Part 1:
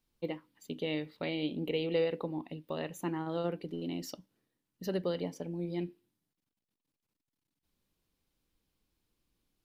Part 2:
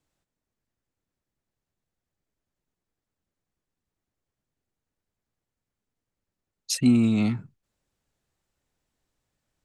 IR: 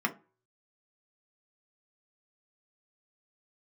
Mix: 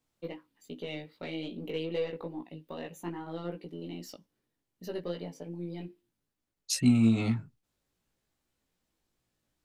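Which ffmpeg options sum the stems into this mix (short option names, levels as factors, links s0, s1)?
-filter_complex "[0:a]highpass=130,aeval=exprs='0.126*(cos(1*acos(clip(val(0)/0.126,-1,1)))-cos(1*PI/2))+0.00316*(cos(8*acos(clip(val(0)/0.126,-1,1)))-cos(8*PI/2))':c=same,volume=1[s0];[1:a]volume=1[s1];[s0][s1]amix=inputs=2:normalize=0,flanger=delay=16.5:depth=2.1:speed=2.5"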